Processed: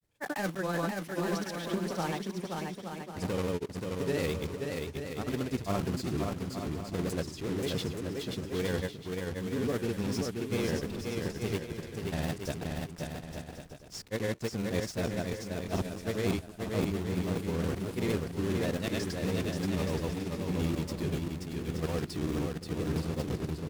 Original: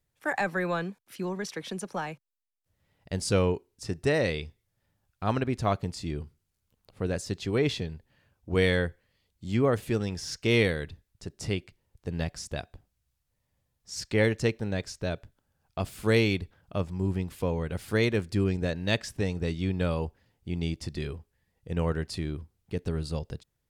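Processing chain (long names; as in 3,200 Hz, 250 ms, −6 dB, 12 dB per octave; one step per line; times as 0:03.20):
one scale factor per block 3 bits
parametric band 260 Hz +7.5 dB 2 octaves
reversed playback
downward compressor 6 to 1, threshold −28 dBFS, peak gain reduction 14 dB
reversed playback
granular cloud
pitch vibrato 5.8 Hz 49 cents
on a send: bouncing-ball delay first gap 530 ms, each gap 0.65×, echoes 5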